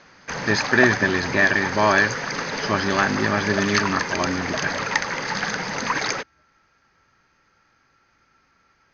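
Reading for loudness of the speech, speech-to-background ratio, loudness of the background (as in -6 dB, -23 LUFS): -21.5 LUFS, 4.0 dB, -25.5 LUFS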